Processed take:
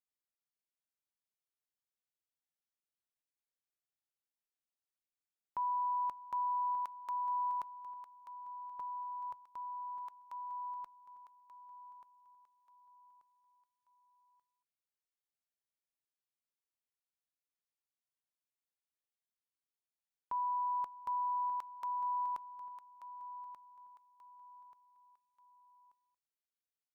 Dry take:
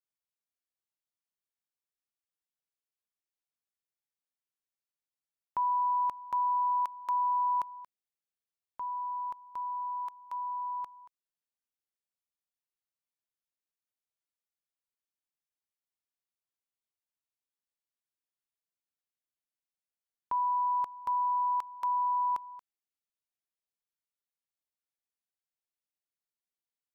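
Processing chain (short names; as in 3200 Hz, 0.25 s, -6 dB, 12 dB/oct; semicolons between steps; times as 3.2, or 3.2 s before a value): 8.81–9.46 graphic EQ 125/250/500 Hz +8/-11/+4 dB; feedback echo 1.184 s, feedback 33%, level -11.5 dB; on a send at -20 dB: reverb RT60 0.10 s, pre-delay 5 ms; on the sum: gain -6.5 dB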